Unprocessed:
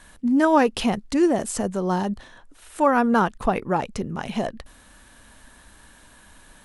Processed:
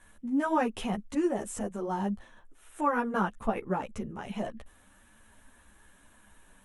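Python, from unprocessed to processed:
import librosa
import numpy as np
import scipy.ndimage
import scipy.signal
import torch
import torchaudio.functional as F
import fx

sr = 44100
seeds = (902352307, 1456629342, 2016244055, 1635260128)

y = fx.peak_eq(x, sr, hz=4600.0, db=-11.5, octaves=0.55)
y = fx.ensemble(y, sr)
y = y * librosa.db_to_amplitude(-5.5)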